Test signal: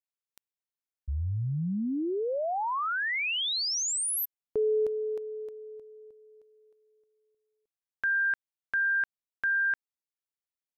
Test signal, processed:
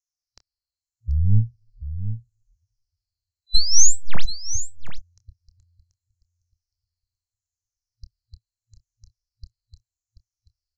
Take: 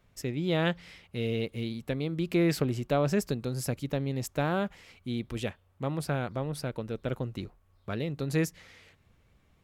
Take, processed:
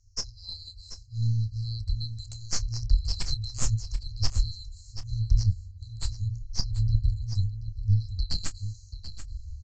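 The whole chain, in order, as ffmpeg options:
-filter_complex "[0:a]afftfilt=real='re*pow(10,16/40*sin(2*PI*(0.88*log(max(b,1)*sr/1024/100)/log(2)-(-0.78)*(pts-256)/sr)))':imag='im*pow(10,16/40*sin(2*PI*(0.88*log(max(b,1)*sr/1024/100)/log(2)-(-0.78)*(pts-256)/sr)))':win_size=1024:overlap=0.75,afftfilt=real='re*(1-between(b*sr/4096,110,4000))':imag='im*(1-between(b*sr/4096,110,4000))':win_size=4096:overlap=0.75,adynamicequalizer=threshold=0.00251:dfrequency=4000:dqfactor=2.3:tfrequency=4000:tqfactor=2.3:attack=5:release=100:ratio=0.4:range=3:mode=boostabove:tftype=bell,aeval=exprs='0.141*(cos(1*acos(clip(val(0)/0.141,-1,1)))-cos(1*PI/2))+0.0355*(cos(2*acos(clip(val(0)/0.141,-1,1)))-cos(2*PI/2))+0.01*(cos(4*acos(clip(val(0)/0.141,-1,1)))-cos(4*PI/2))+0.0251*(cos(6*acos(clip(val(0)/0.141,-1,1)))-cos(6*PI/2))':c=same,acontrast=29,aresample=16000,aresample=44100,asplit=2[a][b];[b]adelay=27,volume=-13dB[c];[a][c]amix=inputs=2:normalize=0,aecho=1:1:734:0.251,asubboost=boost=6.5:cutoff=150,volume=1.5dB"

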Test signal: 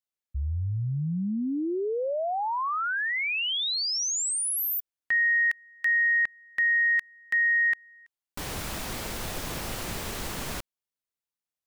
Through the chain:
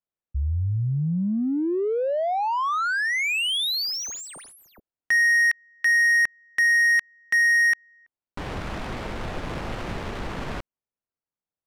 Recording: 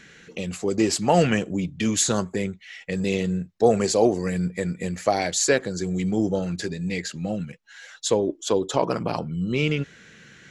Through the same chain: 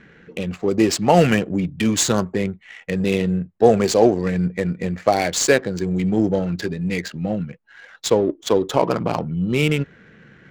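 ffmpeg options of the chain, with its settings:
-af "adynamicsmooth=sensitivity=5:basefreq=1.4k,volume=4.5dB"

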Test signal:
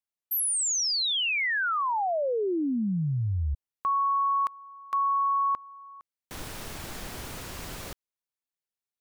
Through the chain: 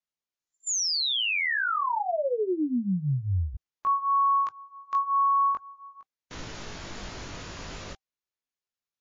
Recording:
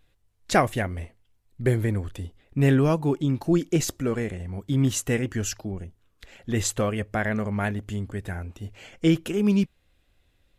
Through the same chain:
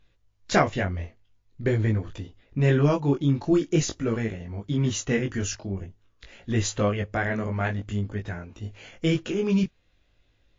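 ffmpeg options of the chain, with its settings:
-af "flanger=delay=18:depth=3.7:speed=0.47,bandreject=f=780:w=23,volume=3.5dB" -ar 16000 -c:a libmp3lame -b:a 40k

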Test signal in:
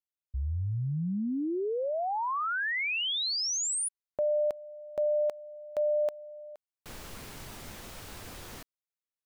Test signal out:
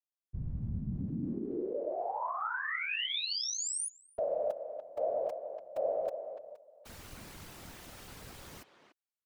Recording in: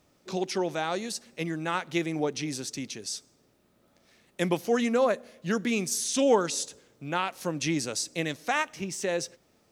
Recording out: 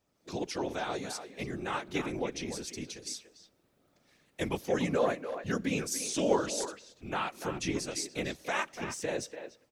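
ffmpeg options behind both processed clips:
-filter_complex "[0:a]afftfilt=real='hypot(re,im)*cos(2*PI*random(0))':imag='hypot(re,im)*sin(2*PI*random(1))':win_size=512:overlap=0.75,dynaudnorm=f=140:g=3:m=7.5dB,asplit=2[a][b];[b]adelay=290,highpass=300,lowpass=3.4k,asoftclip=type=hard:threshold=-15dB,volume=-9dB[c];[a][c]amix=inputs=2:normalize=0,volume=-6.5dB"

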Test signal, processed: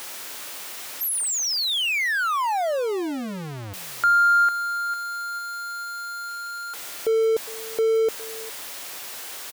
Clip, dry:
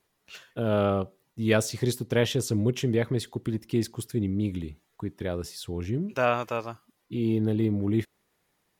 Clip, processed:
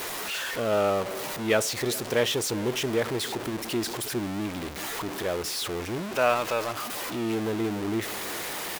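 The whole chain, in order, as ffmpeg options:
-filter_complex "[0:a]aeval=exprs='val(0)+0.5*0.0501*sgn(val(0))':c=same,bass=f=250:g=-13,treble=f=4k:g=-2,asplit=2[a][b];[b]adelay=408.2,volume=-19dB,highshelf=f=4k:g=-9.18[c];[a][c]amix=inputs=2:normalize=0"

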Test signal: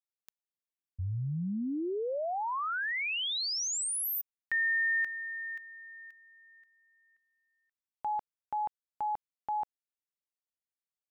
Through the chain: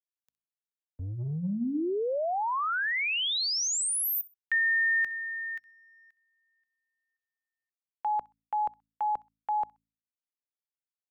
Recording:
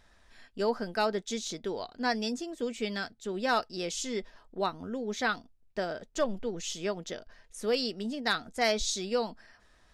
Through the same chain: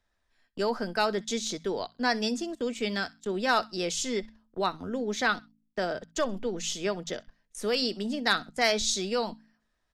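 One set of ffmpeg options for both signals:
-filter_complex "[0:a]agate=range=-19dB:threshold=-50dB:ratio=16:release=21:detection=peak,bandreject=f=54.97:t=h:w=4,bandreject=f=109.94:t=h:w=4,bandreject=f=164.91:t=h:w=4,bandreject=f=219.88:t=h:w=4,bandreject=f=274.85:t=h:w=4,acrossover=split=170|850[a][b][c];[a]asoftclip=type=tanh:threshold=-38.5dB[d];[b]alimiter=level_in=3.5dB:limit=-24dB:level=0:latency=1,volume=-3.5dB[e];[c]aecho=1:1:64|128:0.0891|0.0205[f];[d][e][f]amix=inputs=3:normalize=0,volume=4dB"

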